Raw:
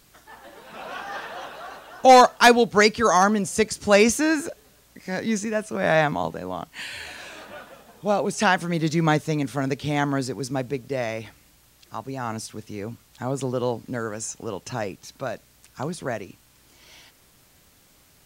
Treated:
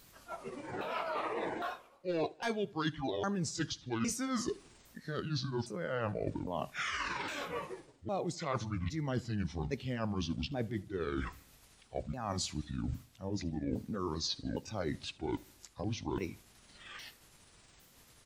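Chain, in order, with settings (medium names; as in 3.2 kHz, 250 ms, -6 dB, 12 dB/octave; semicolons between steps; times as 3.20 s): sawtooth pitch modulation -11 st, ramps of 809 ms; reverse; compression 10:1, threshold -36 dBFS, peak gain reduction 26 dB; reverse; feedback delay 77 ms, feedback 58%, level -21 dB; spectral noise reduction 7 dB; trim +3.5 dB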